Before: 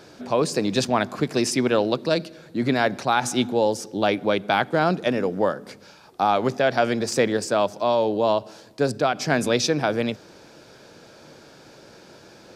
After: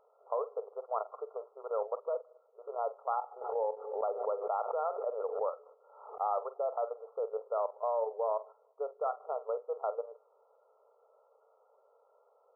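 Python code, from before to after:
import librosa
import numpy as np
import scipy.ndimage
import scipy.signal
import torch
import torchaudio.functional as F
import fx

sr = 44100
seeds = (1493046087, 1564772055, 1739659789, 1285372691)

y = fx.level_steps(x, sr, step_db=11)
y = fx.brickwall_bandpass(y, sr, low_hz=410.0, high_hz=1400.0)
y = fx.doubler(y, sr, ms=46.0, db=-13.5)
y = fx.pre_swell(y, sr, db_per_s=62.0, at=(3.41, 6.21))
y = y * librosa.db_to_amplitude(-8.5)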